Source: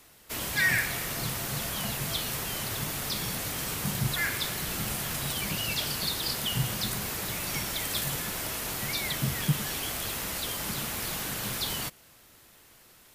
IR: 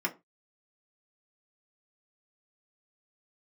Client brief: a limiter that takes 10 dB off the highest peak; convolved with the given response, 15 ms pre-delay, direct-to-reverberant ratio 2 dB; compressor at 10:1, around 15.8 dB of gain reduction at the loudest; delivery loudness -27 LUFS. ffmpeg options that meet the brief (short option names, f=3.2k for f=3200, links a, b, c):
-filter_complex "[0:a]acompressor=threshold=-37dB:ratio=10,alimiter=level_in=10.5dB:limit=-24dB:level=0:latency=1,volume=-10.5dB,asplit=2[a][b];[1:a]atrim=start_sample=2205,adelay=15[c];[b][c]afir=irnorm=-1:irlink=0,volume=-8.5dB[d];[a][d]amix=inputs=2:normalize=0,volume=14dB"